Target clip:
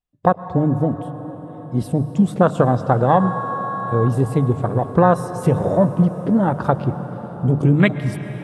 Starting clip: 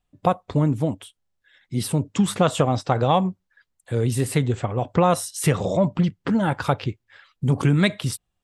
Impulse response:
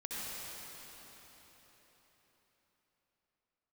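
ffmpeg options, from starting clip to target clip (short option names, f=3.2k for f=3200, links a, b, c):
-filter_complex "[0:a]asettb=1/sr,asplit=3[a][b][c];[a]atrim=end=3.204[d];[b]atrim=start=3.2:end=4.13,asetpts=PTS-STARTPTS,afade=t=in:d=0.004:c=qsin,afade=t=out:st=0.926:d=0.004:c=qsin,aeval=exprs='val(0)+0.0398*sin(2*PI*1100*n/s)':c=same[e];[c]atrim=start=4.126[f];[d][e]acrossfade=d=0.004:c1=hsin:c2=qsin[g];[g][f]acrossfade=d=0.004:c1=qsin:c2=hsin,afwtdn=0.0501,bandreject=f=50:t=h:w=6,bandreject=f=100:t=h:w=6,bandreject=f=150:t=h:w=6,asplit=2[h][i];[1:a]atrim=start_sample=2205,asetrate=26019,aresample=44100[j];[i][j]afir=irnorm=-1:irlink=0,volume=-16dB[k];[h][k]amix=inputs=2:normalize=0,volume=3.5dB"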